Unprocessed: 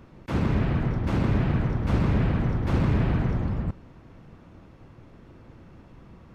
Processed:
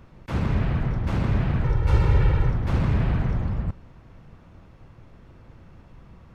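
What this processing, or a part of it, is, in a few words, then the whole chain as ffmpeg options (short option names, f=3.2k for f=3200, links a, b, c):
low shelf boost with a cut just above: -filter_complex "[0:a]lowshelf=f=66:g=5.5,equalizer=f=300:t=o:w=1.1:g=-5,asettb=1/sr,asplit=3[a][b][c];[a]atrim=end=1.644[d];[b]atrim=start=1.64:end=2.5,asetpts=PTS-STARTPTS,afade=t=in:d=0.004:c=qsin,afade=t=out:st=0.856:d=0.004:c=qsin,aecho=1:1:2.2:0.87,atrim=end_sample=37926[e];[c]atrim=start=2.496[f];[d][e]acrossfade=d=0.004:c1=hsin:c2=qsin[g];[g][f]acrossfade=d=0.004:c1=qsin:c2=hsin"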